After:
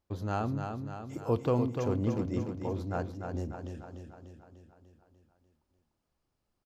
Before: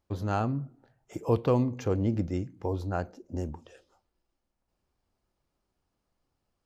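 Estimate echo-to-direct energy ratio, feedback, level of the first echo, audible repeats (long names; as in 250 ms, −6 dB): −4.0 dB, 58%, −6.0 dB, 7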